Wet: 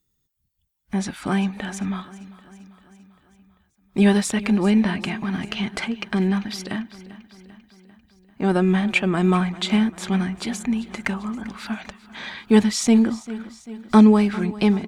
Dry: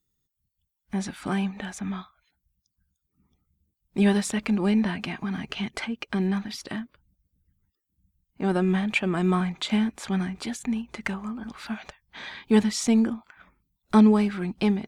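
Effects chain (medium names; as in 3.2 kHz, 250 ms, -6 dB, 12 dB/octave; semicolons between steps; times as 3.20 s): feedback delay 394 ms, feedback 59%, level -18 dB; trim +4.5 dB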